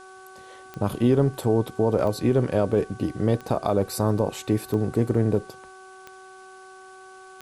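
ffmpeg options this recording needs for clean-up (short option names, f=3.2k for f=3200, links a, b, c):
-af "adeclick=t=4,bandreject=f=377.6:t=h:w=4,bandreject=f=755.2:t=h:w=4,bandreject=f=1.1328k:t=h:w=4,bandreject=f=1.5104k:t=h:w=4,agate=range=-21dB:threshold=-38dB"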